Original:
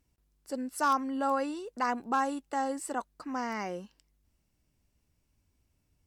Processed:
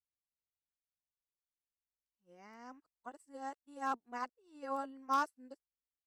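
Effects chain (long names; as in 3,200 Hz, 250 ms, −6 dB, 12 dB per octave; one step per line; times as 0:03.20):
played backwards from end to start
expander for the loud parts 2.5 to 1, over −47 dBFS
level −4.5 dB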